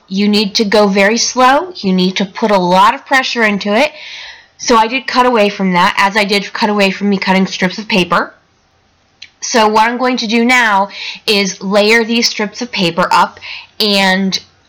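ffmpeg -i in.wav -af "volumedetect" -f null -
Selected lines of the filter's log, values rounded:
mean_volume: -12.5 dB
max_volume: -3.3 dB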